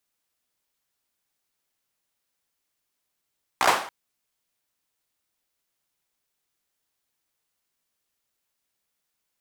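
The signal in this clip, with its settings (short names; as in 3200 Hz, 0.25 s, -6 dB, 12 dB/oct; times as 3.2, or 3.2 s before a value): hand clap length 0.28 s, bursts 5, apart 16 ms, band 880 Hz, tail 0.48 s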